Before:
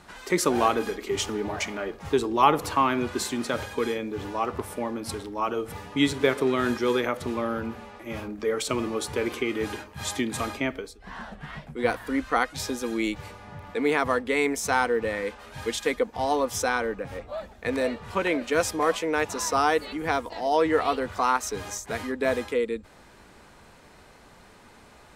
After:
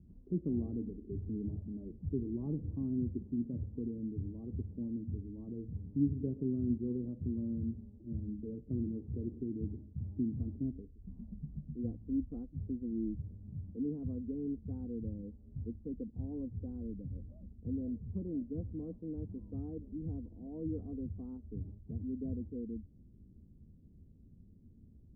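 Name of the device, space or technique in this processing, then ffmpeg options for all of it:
the neighbour's flat through the wall: -af "lowpass=f=250:w=0.5412,lowpass=f=250:w=1.3066,equalizer=f=82:t=o:w=0.72:g=5.5,volume=-2dB"

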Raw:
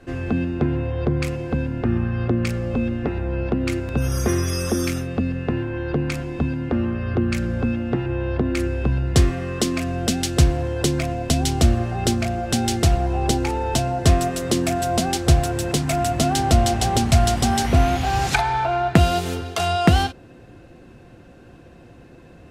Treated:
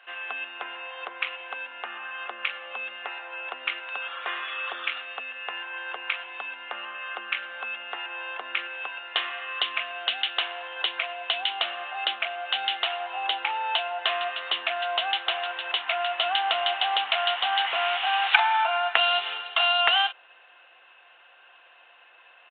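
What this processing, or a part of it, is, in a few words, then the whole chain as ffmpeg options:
musical greeting card: -af "aresample=8000,aresample=44100,highpass=f=870:w=0.5412,highpass=f=870:w=1.3066,equalizer=f=2.9k:t=o:w=0.23:g=9,volume=2dB"

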